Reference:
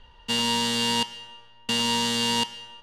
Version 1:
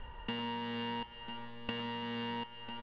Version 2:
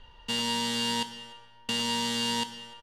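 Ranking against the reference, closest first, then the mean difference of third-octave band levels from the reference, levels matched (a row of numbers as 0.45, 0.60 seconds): 2, 1; 2.0, 11.5 decibels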